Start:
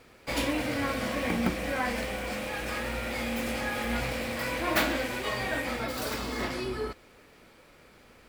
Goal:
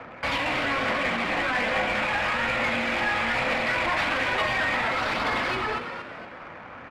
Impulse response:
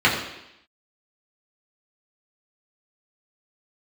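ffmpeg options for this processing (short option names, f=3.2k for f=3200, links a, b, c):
-filter_complex "[0:a]bandreject=f=50:t=h:w=6,bandreject=f=100:t=h:w=6,bandreject=f=150:t=h:w=6,bandreject=f=200:t=h:w=6,bandreject=f=250:t=h:w=6,bandreject=f=300:t=h:w=6,bandreject=f=350:t=h:w=6,bandreject=f=400:t=h:w=6,bandreject=f=450:t=h:w=6,asplit=2[a][b];[b]highpass=f=720:p=1,volume=28dB,asoftclip=type=tanh:threshold=-11dB[c];[a][c]amix=inputs=2:normalize=0,lowpass=f=2.9k:p=1,volume=-6dB,equalizer=f=100:t=o:w=0.67:g=4,equalizer=f=400:t=o:w=0.67:g=-10,equalizer=f=16k:t=o:w=0.67:g=-4,acrossover=split=2400[d][e];[d]alimiter=limit=-21dB:level=0:latency=1:release=192[f];[f][e]amix=inputs=2:normalize=0,acrossover=split=280|3000[g][h][i];[g]acompressor=threshold=-39dB:ratio=6[j];[j][h][i]amix=inputs=3:normalize=0,aphaser=in_gain=1:out_gain=1:delay=1.2:decay=0.24:speed=0.95:type=triangular,adynamicsmooth=sensitivity=3.5:basefreq=1.4k,atempo=1.2,aemphasis=mode=reproduction:type=75fm,asplit=5[k][l][m][n][o];[l]adelay=233,afreqshift=110,volume=-8dB[p];[m]adelay=466,afreqshift=220,volume=-16.4dB[q];[n]adelay=699,afreqshift=330,volume=-24.8dB[r];[o]adelay=932,afreqshift=440,volume=-33.2dB[s];[k][p][q][r][s]amix=inputs=5:normalize=0,asplit=2[t][u];[1:a]atrim=start_sample=2205,adelay=73[v];[u][v]afir=irnorm=-1:irlink=0,volume=-33.5dB[w];[t][w]amix=inputs=2:normalize=0"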